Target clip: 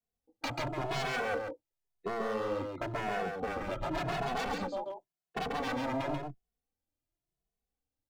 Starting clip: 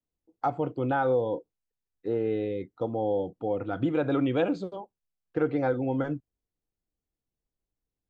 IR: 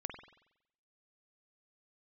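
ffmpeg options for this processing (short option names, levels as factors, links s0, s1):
-filter_complex "[0:a]asettb=1/sr,asplit=3[s0][s1][s2];[s0]atrim=end=4.504[s3];[s1]atrim=start=4.5:end=5.38,asetpts=PTS-STARTPTS,afade=t=in:d=0.004:c=qsin,afade=t=out:st=0.876:d=0.004:c=qsin,highpass=110[s4];[s2]atrim=start=5.376[s5];[s3][s4]acrossfade=d=0.004:c1=hsin:c2=qsin[s6];[s6][s5]acrossfade=d=0.004:c1=qsin:c2=hsin,aeval=exprs='0.0335*(abs(mod(val(0)/0.0335+3,4)-2)-1)':c=same,asplit=3[s7][s8][s9];[s7]afade=t=out:st=3.46:d=0.02[s10];[s8]afreqshift=-130,afade=t=in:st=3.46:d=0.02,afade=t=out:st=3.89:d=0.02[s11];[s9]afade=t=in:st=3.89:d=0.02[s12];[s10][s11][s12]amix=inputs=3:normalize=0,equalizer=f=710:w=3.6:g=7.5,agate=range=0.398:threshold=0.00631:ratio=16:detection=peak,acompressor=threshold=0.0126:ratio=4,asplit=2[s13][s14];[s14]aecho=0:1:137:0.631[s15];[s13][s15]amix=inputs=2:normalize=0,asplit=2[s16][s17];[s17]adelay=2.3,afreqshift=0.93[s18];[s16][s18]amix=inputs=2:normalize=1,volume=2.24"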